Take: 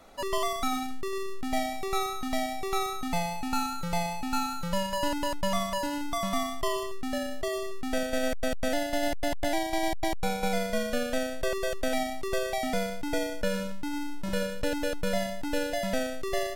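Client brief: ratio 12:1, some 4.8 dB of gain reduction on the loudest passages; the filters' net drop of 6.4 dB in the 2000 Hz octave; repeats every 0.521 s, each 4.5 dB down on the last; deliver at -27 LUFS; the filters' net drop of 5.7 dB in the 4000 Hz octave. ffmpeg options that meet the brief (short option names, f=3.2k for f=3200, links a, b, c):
-af "equalizer=f=2k:t=o:g=-7,equalizer=f=4k:t=o:g=-5,acompressor=threshold=-28dB:ratio=12,aecho=1:1:521|1042|1563|2084|2605|3126|3647|4168|4689:0.596|0.357|0.214|0.129|0.0772|0.0463|0.0278|0.0167|0.01,volume=6.5dB"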